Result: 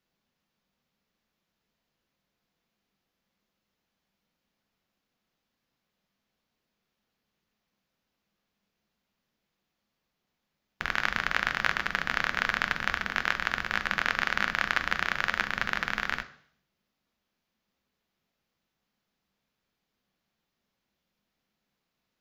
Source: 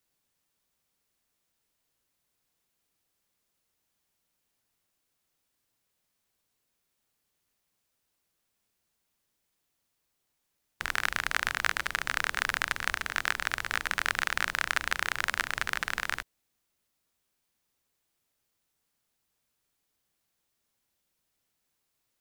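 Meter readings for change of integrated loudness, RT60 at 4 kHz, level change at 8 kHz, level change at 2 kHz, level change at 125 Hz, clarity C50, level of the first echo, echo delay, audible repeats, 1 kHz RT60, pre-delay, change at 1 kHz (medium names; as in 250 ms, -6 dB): +1.5 dB, 0.70 s, -8.0 dB, +2.0 dB, +4.0 dB, 15.0 dB, no echo, no echo, no echo, 0.60 s, 3 ms, +2.0 dB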